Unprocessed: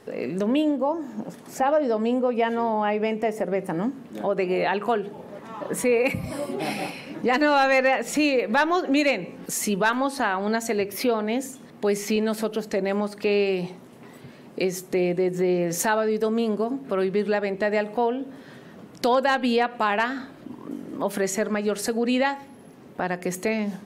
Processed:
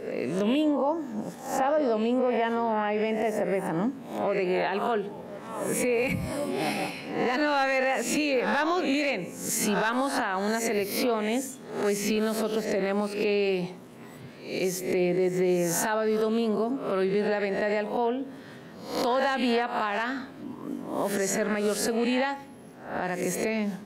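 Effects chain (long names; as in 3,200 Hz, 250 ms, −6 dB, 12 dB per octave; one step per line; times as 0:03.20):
peak hold with a rise ahead of every peak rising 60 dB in 0.53 s
brickwall limiter −15 dBFS, peak gain reduction 7 dB
level −2 dB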